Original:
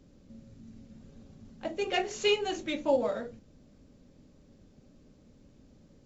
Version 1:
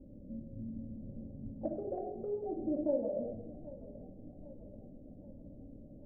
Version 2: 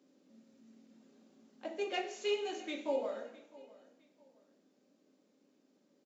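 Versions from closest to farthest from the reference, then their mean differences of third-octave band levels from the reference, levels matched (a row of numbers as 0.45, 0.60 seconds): 2, 1; 5.0, 9.5 decibels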